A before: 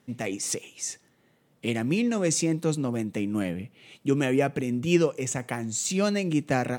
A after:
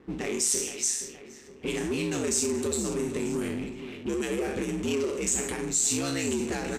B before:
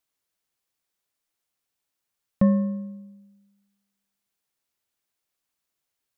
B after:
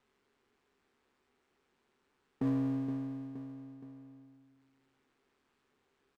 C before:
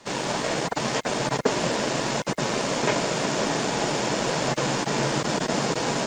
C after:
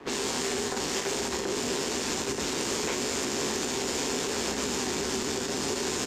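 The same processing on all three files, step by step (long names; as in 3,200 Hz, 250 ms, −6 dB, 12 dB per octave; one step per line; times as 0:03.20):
peak hold with a decay on every bin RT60 0.46 s
ring modulation 70 Hz
downward compressor 2.5 to 1, threshold −28 dBFS
thirty-one-band graphic EQ 250 Hz +8 dB, 400 Hz +11 dB, 630 Hz −5 dB, 8,000 Hz +5 dB
repeating echo 470 ms, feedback 38%, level −16 dB
brickwall limiter −17.5 dBFS
high-shelf EQ 2,100 Hz +10 dB
low-pass that shuts in the quiet parts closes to 1,400 Hz, open at −22 dBFS
power curve on the samples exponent 0.7
level −6.5 dB
MP3 96 kbit/s 32,000 Hz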